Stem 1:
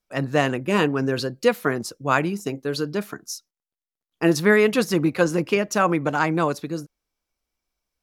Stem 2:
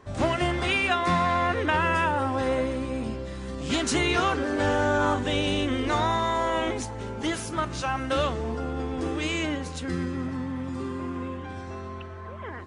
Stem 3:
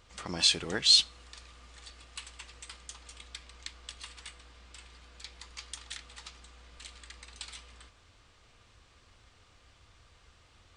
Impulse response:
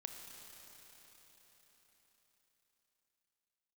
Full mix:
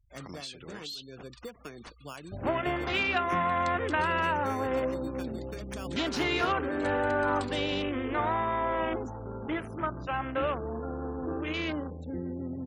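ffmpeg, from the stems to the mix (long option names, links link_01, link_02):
-filter_complex "[0:a]equalizer=frequency=13000:width_type=o:width=0.96:gain=6,acrusher=samples=11:mix=1:aa=0.000001,volume=-16dB[link_01];[1:a]afwtdn=0.02,adelay=2250,volume=-3.5dB[link_02];[2:a]volume=-3dB,asplit=3[link_03][link_04][link_05];[link_03]atrim=end=2.35,asetpts=PTS-STARTPTS,afade=type=out:start_time=2.346:duration=0.004:curve=hsin[link_06];[link_04]atrim=start=2.35:end=3.47,asetpts=PTS-STARTPTS,volume=0[link_07];[link_05]atrim=start=3.47,asetpts=PTS-STARTPTS,afade=type=in:duration=0.004:curve=hsin[link_08];[link_06][link_07][link_08]concat=n=3:v=0:a=1[link_09];[link_01][link_09]amix=inputs=2:normalize=0,asoftclip=type=tanh:threshold=-21dB,acompressor=threshold=-38dB:ratio=20,volume=0dB[link_10];[link_02][link_10]amix=inputs=2:normalize=0,afftfilt=real='re*gte(hypot(re,im),0.00316)':imag='im*gte(hypot(re,im),0.00316)':win_size=1024:overlap=0.75,acrossover=split=260|3000[link_11][link_12][link_13];[link_11]acompressor=threshold=-37dB:ratio=10[link_14];[link_14][link_12][link_13]amix=inputs=3:normalize=0"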